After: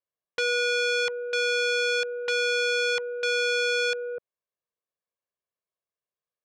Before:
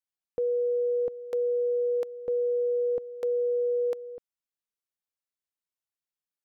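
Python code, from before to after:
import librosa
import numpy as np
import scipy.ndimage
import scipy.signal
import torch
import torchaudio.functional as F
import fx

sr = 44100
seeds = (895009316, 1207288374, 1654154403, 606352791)

y = fx.bandpass_q(x, sr, hz=400.0, q=0.51)
y = y + 0.65 * np.pad(y, (int(1.8 * sr / 1000.0), 0))[:len(y)]
y = fx.transformer_sat(y, sr, knee_hz=2400.0)
y = F.gain(torch.from_numpy(y), 5.5).numpy()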